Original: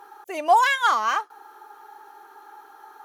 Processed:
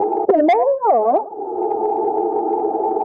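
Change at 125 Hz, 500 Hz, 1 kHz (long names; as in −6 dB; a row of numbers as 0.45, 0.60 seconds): can't be measured, +16.5 dB, +5.0 dB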